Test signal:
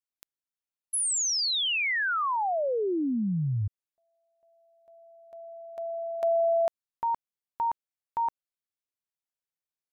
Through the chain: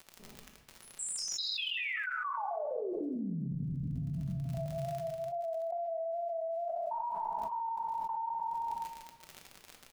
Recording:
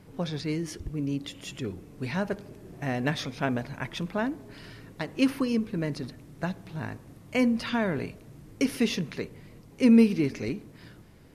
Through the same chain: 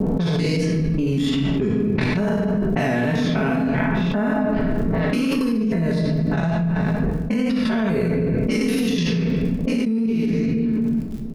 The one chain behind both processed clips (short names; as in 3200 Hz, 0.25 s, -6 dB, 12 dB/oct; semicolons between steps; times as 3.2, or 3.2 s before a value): stepped spectrum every 0.2 s; reverb removal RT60 0.92 s; low-pass opened by the level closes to 360 Hz, open at -32 dBFS; comb 4.6 ms, depth 65%; vibrato 2.3 Hz 49 cents; level quantiser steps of 18 dB; crackle 59/s -66 dBFS; shoebox room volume 510 m³, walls mixed, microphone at 1.1 m; fast leveller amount 100%; gain -7 dB